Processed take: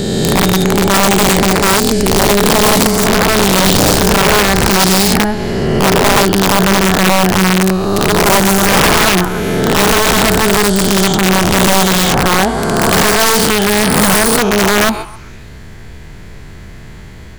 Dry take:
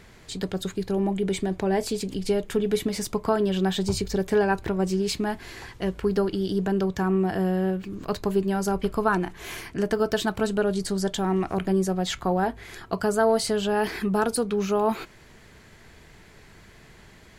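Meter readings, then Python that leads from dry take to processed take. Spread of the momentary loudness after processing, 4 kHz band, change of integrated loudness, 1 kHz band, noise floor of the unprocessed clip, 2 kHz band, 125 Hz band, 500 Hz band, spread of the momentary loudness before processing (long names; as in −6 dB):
4 LU, +21.5 dB, +15.5 dB, +17.0 dB, −51 dBFS, +20.5 dB, +15.0 dB, +11.5 dB, 8 LU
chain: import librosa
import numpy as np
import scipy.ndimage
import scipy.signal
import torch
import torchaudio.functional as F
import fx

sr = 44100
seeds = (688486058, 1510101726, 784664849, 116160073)

p1 = fx.spec_swells(x, sr, rise_s=2.84)
p2 = fx.low_shelf(p1, sr, hz=230.0, db=11.0)
p3 = fx.rider(p2, sr, range_db=5, speed_s=2.0)
p4 = p2 + (p3 * 10.0 ** (2.5 / 20.0))
p5 = fx.quant_dither(p4, sr, seeds[0], bits=10, dither='none')
p6 = p5 + fx.echo_stepped(p5, sr, ms=132, hz=950.0, octaves=0.7, feedback_pct=70, wet_db=-9.0, dry=0)
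p7 = (np.mod(10.0 ** (3.5 / 20.0) * p6 + 1.0, 2.0) - 1.0) / 10.0 ** (3.5 / 20.0)
y = fx.end_taper(p7, sr, db_per_s=170.0)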